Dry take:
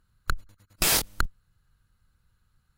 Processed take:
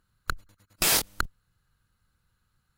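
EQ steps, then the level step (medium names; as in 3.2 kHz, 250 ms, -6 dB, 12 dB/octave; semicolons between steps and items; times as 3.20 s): bass shelf 100 Hz -8 dB; 0.0 dB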